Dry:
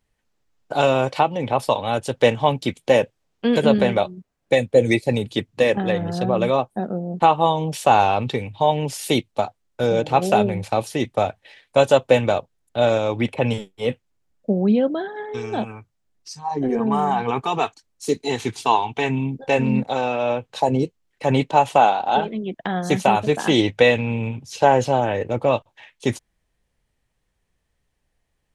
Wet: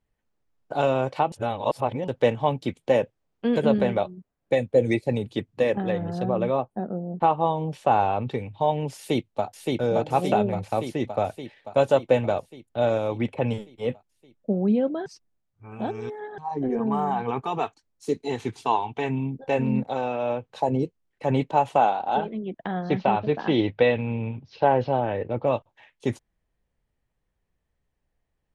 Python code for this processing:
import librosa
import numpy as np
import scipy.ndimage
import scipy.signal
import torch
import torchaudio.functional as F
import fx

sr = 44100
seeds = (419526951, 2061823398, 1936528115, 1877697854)

y = fx.high_shelf(x, sr, hz=4800.0, db=-11.5, at=(6.33, 8.31))
y = fx.echo_throw(y, sr, start_s=8.96, length_s=0.5, ms=570, feedback_pct=65, wet_db=-2.0)
y = fx.steep_lowpass(y, sr, hz=5000.0, slope=48, at=(22.71, 25.47))
y = fx.edit(y, sr, fx.reverse_span(start_s=1.32, length_s=0.76),
    fx.reverse_span(start_s=15.06, length_s=1.32), tone=tone)
y = fx.high_shelf(y, sr, hz=2300.0, db=-9.5)
y = y * 10.0 ** (-4.0 / 20.0)